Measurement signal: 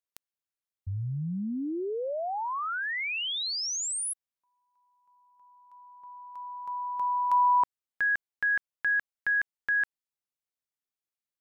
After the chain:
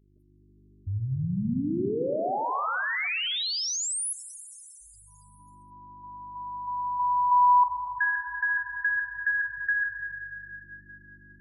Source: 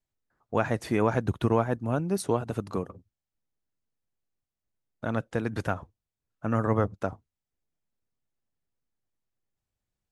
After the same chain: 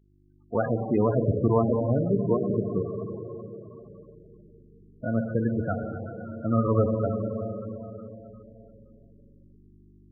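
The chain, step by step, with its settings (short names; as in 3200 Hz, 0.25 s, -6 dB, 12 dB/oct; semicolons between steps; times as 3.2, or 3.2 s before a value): buzz 50 Hz, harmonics 8, -65 dBFS -4 dB/oct; Schroeder reverb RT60 4 s, combs from 31 ms, DRR 1.5 dB; loudest bins only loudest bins 16; gain +2 dB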